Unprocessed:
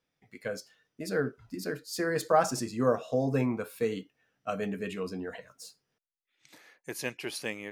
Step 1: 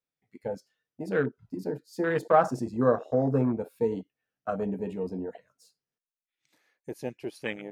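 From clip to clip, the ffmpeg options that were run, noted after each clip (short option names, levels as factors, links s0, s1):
-af "afwtdn=0.0178,volume=1.41"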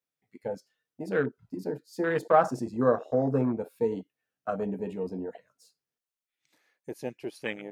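-af "lowshelf=f=110:g=-6"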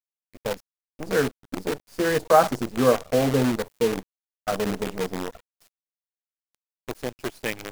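-af "acrusher=bits=6:dc=4:mix=0:aa=0.000001,volume=1.68"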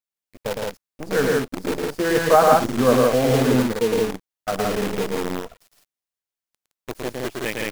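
-af "aecho=1:1:110.8|166.2:0.708|0.794,volume=1.12"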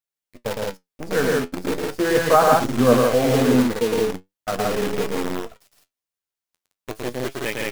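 -af "flanger=delay=7.1:depth=5.2:regen=63:speed=0.4:shape=sinusoidal,volume=1.68"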